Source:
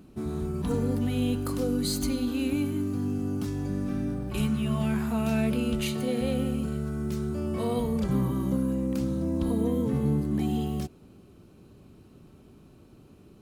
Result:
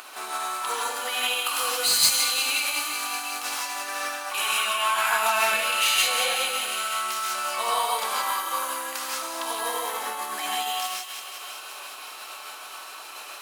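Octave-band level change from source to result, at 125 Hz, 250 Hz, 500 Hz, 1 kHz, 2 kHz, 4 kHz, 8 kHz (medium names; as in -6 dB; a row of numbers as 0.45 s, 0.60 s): under -30 dB, -23.0 dB, -2.5 dB, +15.5 dB, +17.0 dB, +16.5 dB, +17.0 dB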